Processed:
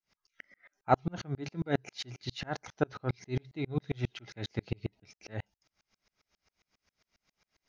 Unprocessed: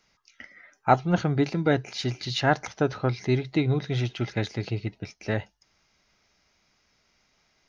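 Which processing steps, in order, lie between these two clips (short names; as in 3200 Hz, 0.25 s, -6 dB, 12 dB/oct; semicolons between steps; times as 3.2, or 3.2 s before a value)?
dB-ramp tremolo swelling 7.4 Hz, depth 37 dB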